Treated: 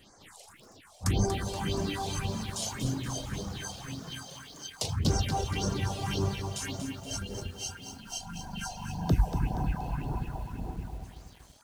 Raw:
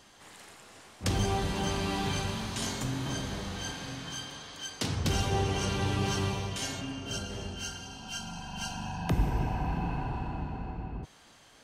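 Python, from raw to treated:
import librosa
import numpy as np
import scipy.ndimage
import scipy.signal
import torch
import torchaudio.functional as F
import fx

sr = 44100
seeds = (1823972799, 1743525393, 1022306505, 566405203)

y = fx.phaser_stages(x, sr, stages=4, low_hz=240.0, high_hz=3100.0, hz=1.8, feedback_pct=30)
y = fx.dereverb_blind(y, sr, rt60_s=1.8)
y = fx.echo_crushed(y, sr, ms=237, feedback_pct=55, bits=9, wet_db=-8.0)
y = y * 10.0 ** (2.5 / 20.0)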